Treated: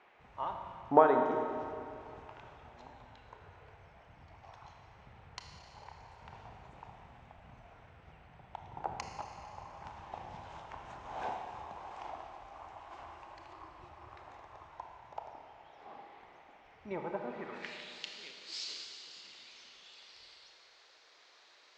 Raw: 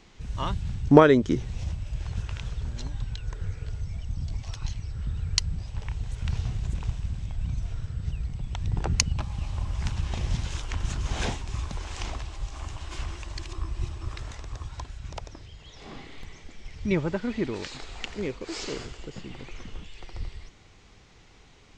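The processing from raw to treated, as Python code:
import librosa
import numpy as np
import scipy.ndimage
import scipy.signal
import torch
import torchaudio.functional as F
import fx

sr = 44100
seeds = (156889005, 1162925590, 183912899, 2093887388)

y = fx.filter_sweep_bandpass(x, sr, from_hz=810.0, to_hz=4300.0, start_s=17.29, end_s=17.97, q=2.8)
y = fx.rev_schroeder(y, sr, rt60_s=2.5, comb_ms=25, drr_db=3.0)
y = fx.dmg_noise_band(y, sr, seeds[0], low_hz=360.0, high_hz=2500.0, level_db=-66.0)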